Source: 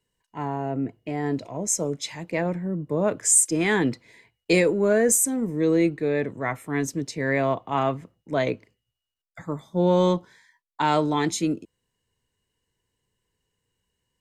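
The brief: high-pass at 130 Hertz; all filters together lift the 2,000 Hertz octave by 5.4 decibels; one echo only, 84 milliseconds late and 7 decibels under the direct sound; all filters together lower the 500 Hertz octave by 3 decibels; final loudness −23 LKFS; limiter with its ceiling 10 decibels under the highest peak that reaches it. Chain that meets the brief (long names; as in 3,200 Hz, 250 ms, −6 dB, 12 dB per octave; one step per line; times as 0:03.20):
high-pass filter 130 Hz
parametric band 500 Hz −4 dB
parametric band 2,000 Hz +6.5 dB
brickwall limiter −16 dBFS
single-tap delay 84 ms −7 dB
level +3.5 dB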